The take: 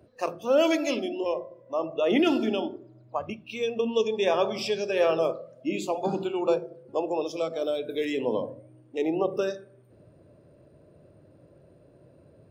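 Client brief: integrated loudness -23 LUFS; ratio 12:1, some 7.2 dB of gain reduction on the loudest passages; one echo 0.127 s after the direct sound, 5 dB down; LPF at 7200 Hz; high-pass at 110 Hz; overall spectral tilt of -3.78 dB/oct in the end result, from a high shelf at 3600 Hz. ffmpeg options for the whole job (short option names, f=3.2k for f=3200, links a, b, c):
-af "highpass=110,lowpass=7.2k,highshelf=f=3.6k:g=-3.5,acompressor=threshold=-25dB:ratio=12,aecho=1:1:127:0.562,volume=7.5dB"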